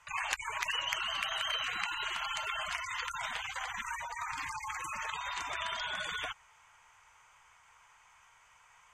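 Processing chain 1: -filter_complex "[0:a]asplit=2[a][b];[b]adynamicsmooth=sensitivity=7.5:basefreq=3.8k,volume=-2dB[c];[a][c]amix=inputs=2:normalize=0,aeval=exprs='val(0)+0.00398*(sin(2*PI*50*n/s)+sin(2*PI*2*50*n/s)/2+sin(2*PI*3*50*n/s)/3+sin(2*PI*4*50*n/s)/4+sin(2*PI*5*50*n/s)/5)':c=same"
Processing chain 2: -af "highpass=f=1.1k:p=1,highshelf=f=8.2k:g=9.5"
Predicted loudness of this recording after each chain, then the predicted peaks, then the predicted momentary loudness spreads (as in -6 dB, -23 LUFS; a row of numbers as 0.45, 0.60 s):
-31.5, -36.0 LUFS; -7.5, -10.0 dBFS; 6, 7 LU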